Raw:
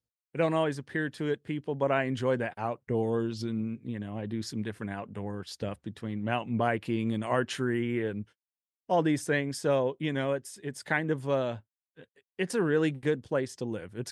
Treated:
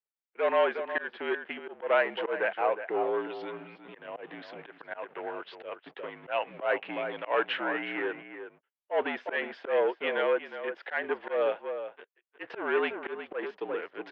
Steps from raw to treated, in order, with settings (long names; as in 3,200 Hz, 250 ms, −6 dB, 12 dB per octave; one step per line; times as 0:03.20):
leveller curve on the samples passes 2
slap from a distant wall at 62 metres, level −10 dB
single-sideband voice off tune −51 Hz 520–3,100 Hz
volume swells 131 ms